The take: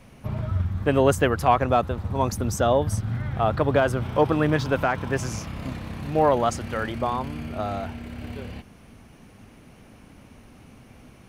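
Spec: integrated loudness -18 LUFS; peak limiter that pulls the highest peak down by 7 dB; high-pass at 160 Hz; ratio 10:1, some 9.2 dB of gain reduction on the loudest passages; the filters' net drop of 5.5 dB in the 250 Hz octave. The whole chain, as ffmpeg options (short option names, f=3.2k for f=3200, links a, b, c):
-af "highpass=160,equalizer=f=250:t=o:g=-6,acompressor=threshold=-24dB:ratio=10,volume=15.5dB,alimiter=limit=-5dB:level=0:latency=1"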